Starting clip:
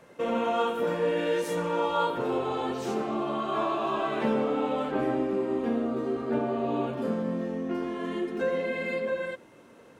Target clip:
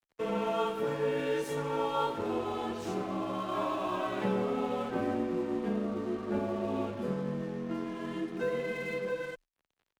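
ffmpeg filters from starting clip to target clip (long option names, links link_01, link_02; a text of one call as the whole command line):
ffmpeg -i in.wav -af "aeval=exprs='sgn(val(0))*max(abs(val(0))-0.00501,0)':channel_layout=same,afreqshift=-28,volume=-3.5dB" out.wav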